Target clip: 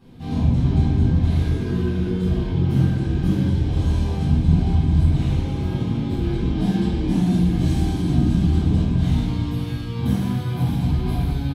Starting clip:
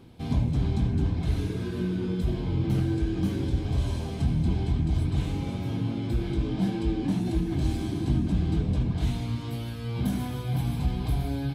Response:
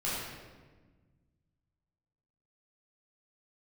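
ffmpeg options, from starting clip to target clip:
-filter_complex "[0:a]asettb=1/sr,asplit=3[link_01][link_02][link_03];[link_01]atrim=end=6.564[link_04];[link_02]atrim=start=6.56:end=8.84,asetpts=PTS-STARTPTS,afade=type=in:duration=0.004:curve=qsin,afade=type=out:start_time=2.276:duration=0.004:curve=qsin,highshelf=frequency=4400:gain=5.5[link_05];[link_03]atrim=start=8.836[link_06];[link_04][link_05]acrossfade=duration=0.004:curve1=hsin:curve2=qsin[link_07];[link_07][link_06]acrossfade=duration=0.004:curve1=qsin:curve2=hsin,aecho=1:1:608:0.299[link_08];[1:a]atrim=start_sample=2205,afade=type=out:start_time=0.34:duration=0.01,atrim=end_sample=15435,asetrate=57330,aresample=44100[link_09];[link_08][link_09]afir=irnorm=-1:irlink=0"

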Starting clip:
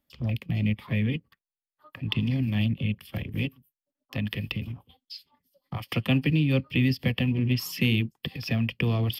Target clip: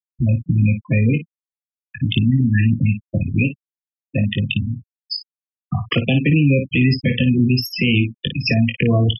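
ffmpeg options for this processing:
ffmpeg -i in.wav -filter_complex "[0:a]asplit=2[link_01][link_02];[link_02]acompressor=threshold=-37dB:ratio=5,volume=2dB[link_03];[link_01][link_03]amix=inputs=2:normalize=0,asettb=1/sr,asplit=3[link_04][link_05][link_06];[link_04]atrim=end=2.204[link_07];[link_05]atrim=start=2.2:end=2.79,asetpts=PTS-STARTPTS,afade=type=in:duration=0.004:curve=qsin,afade=type=out:start_time=0.586:duration=0.004:curve=qsin,equalizer=frequency=630:width_type=o:width=0.67:gain=-4,equalizer=frequency=1600:width_type=o:width=0.67:gain=9,equalizer=frequency=4000:width_type=o:width=0.67:gain=-11[link_08];[link_06]atrim=start=2.786[link_09];[link_07][link_08]acrossfade=duration=0.004:curve1=hsin:curve2=qsin[link_10];[link_10][link_09]acrossfade=duration=0.004:curve1=qsin:curve2=hsin,afftfilt=real='re*gte(hypot(re,im),0.0891)':imag='im*gte(hypot(re,im),0.0891)':win_size=1024:overlap=0.75,lowshelf=frequency=230:gain=-4,asplit=2[link_11][link_12];[link_12]aecho=0:1:21|55:0.335|0.237[link_13];[link_11][link_13]amix=inputs=2:normalize=0,alimiter=level_in=17.5dB:limit=-1dB:release=50:level=0:latency=1,volume=-6dB" out.wav

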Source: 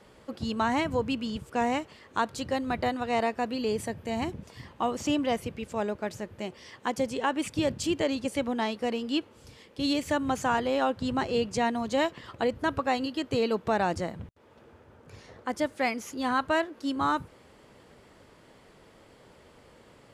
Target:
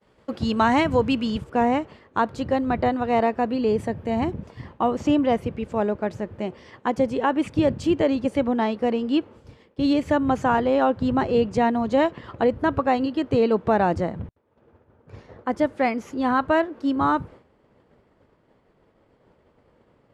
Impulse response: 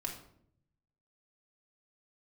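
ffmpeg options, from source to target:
-af "agate=range=-33dB:threshold=-46dB:ratio=3:detection=peak,asetnsamples=nb_out_samples=441:pad=0,asendcmd='1.44 lowpass f 1100',lowpass=frequency=3700:poles=1,volume=8dB"

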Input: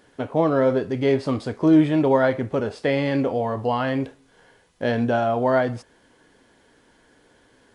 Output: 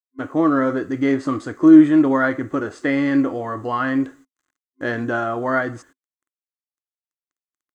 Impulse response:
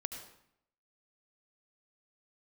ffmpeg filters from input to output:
-af "agate=range=-20dB:threshold=-46dB:ratio=16:detection=peak,acrusher=bits=10:mix=0:aa=0.000001,superequalizer=6b=3.55:10b=3.55:11b=2.82:15b=2.82,volume=-4dB"

